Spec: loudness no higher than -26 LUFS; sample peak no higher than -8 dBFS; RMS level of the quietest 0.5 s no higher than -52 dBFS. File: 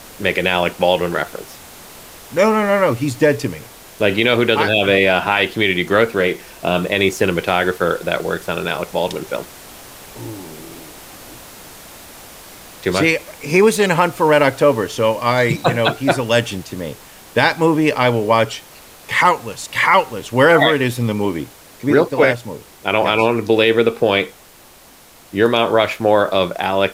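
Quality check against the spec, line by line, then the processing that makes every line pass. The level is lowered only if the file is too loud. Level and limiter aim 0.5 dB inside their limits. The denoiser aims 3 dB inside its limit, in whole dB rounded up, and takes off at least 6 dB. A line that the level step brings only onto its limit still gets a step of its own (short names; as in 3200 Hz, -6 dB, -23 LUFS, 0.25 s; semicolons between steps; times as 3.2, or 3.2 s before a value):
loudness -16.5 LUFS: fail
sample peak -1.5 dBFS: fail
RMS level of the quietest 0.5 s -45 dBFS: fail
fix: gain -10 dB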